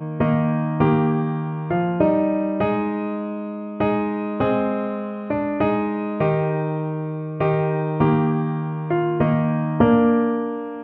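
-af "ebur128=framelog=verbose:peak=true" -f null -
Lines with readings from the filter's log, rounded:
Integrated loudness:
  I:         -21.5 LUFS
  Threshold: -31.5 LUFS
Loudness range:
  LRA:         3.5 LU
  Threshold: -42.0 LUFS
  LRA low:   -23.5 LUFS
  LRA high:  -20.0 LUFS
True peak:
  Peak:       -2.3 dBFS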